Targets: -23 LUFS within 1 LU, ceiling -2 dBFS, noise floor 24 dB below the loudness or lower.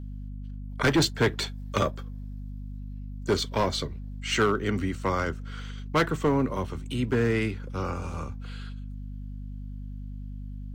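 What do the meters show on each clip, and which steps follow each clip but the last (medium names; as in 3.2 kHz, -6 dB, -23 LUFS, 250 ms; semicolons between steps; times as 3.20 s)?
clipped samples 0.8%; clipping level -17.0 dBFS; hum 50 Hz; highest harmonic 250 Hz; hum level -35 dBFS; loudness -28.0 LUFS; peak level -17.0 dBFS; loudness target -23.0 LUFS
-> clip repair -17 dBFS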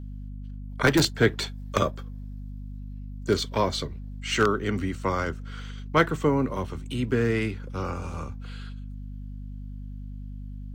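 clipped samples 0.0%; hum 50 Hz; highest harmonic 250 Hz; hum level -35 dBFS
-> de-hum 50 Hz, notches 5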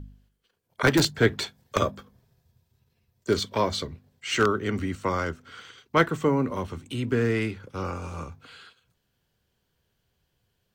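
hum not found; loudness -26.5 LUFS; peak level -7.5 dBFS; loudness target -23.0 LUFS
-> trim +3.5 dB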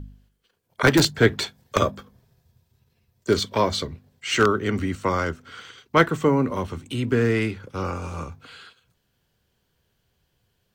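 loudness -23.0 LUFS; peak level -4.0 dBFS; noise floor -72 dBFS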